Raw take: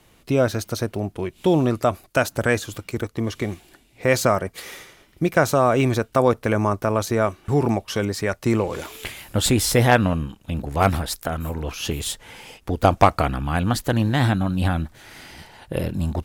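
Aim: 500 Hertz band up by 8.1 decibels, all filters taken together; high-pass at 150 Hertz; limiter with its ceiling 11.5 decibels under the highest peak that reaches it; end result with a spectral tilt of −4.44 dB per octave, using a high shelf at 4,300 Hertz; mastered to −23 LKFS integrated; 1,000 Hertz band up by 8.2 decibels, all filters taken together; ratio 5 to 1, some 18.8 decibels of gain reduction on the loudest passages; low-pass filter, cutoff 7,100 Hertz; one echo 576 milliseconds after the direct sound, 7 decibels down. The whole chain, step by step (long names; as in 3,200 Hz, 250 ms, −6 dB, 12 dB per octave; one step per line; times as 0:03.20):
high-pass filter 150 Hz
low-pass filter 7,100 Hz
parametric band 500 Hz +7.5 dB
parametric band 1,000 Hz +8.5 dB
high-shelf EQ 4,300 Hz −4.5 dB
downward compressor 5 to 1, threshold −24 dBFS
brickwall limiter −18.5 dBFS
single-tap delay 576 ms −7 dB
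level +8.5 dB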